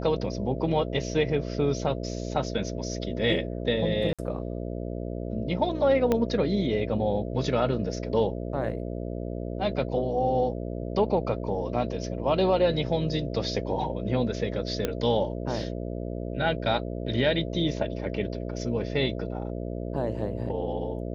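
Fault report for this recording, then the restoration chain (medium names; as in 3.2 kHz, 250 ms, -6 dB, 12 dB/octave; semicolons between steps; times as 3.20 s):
buzz 60 Hz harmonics 11 -33 dBFS
4.13–4.19 s: dropout 56 ms
6.12 s: pop -12 dBFS
14.85 s: pop -12 dBFS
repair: de-click; de-hum 60 Hz, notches 11; interpolate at 4.13 s, 56 ms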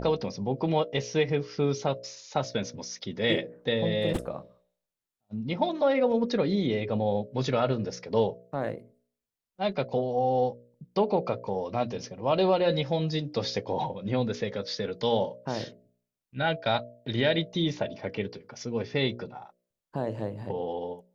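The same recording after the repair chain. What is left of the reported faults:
6.12 s: pop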